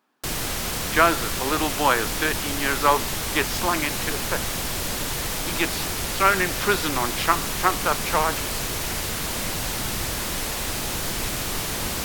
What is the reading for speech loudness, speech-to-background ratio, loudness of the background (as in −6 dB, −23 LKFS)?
−24.0 LKFS, 2.0 dB, −26.0 LKFS